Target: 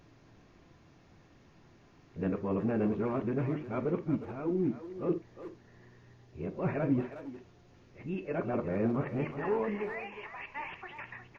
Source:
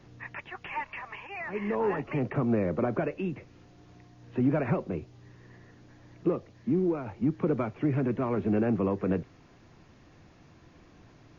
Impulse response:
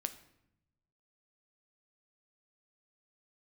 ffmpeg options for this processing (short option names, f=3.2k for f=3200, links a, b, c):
-filter_complex "[0:a]areverse,asplit=2[a][b];[b]adelay=360,highpass=300,lowpass=3.4k,asoftclip=type=hard:threshold=-25dB,volume=-10dB[c];[a][c]amix=inputs=2:normalize=0[d];[1:a]atrim=start_sample=2205,afade=t=out:st=0.2:d=0.01,atrim=end_sample=9261,asetrate=66150,aresample=44100[e];[d][e]afir=irnorm=-1:irlink=0"